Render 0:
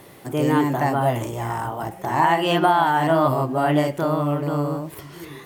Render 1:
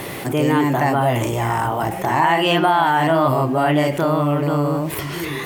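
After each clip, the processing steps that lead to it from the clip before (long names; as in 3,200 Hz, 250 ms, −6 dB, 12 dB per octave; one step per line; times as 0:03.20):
parametric band 2,400 Hz +4.5 dB 0.88 octaves
envelope flattener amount 50%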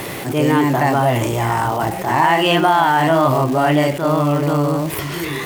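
surface crackle 560 per second −26 dBFS
level that may rise only so fast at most 140 dB per second
level +2 dB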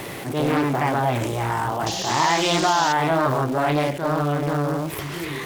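sound drawn into the spectrogram noise, 0:01.86–0:02.93, 2,700–7,000 Hz −24 dBFS
highs frequency-modulated by the lows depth 0.53 ms
level −5.5 dB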